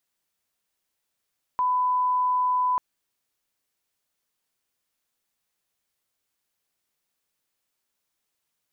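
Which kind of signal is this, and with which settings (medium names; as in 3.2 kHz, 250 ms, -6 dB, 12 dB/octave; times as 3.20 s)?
line-up tone -20 dBFS 1.19 s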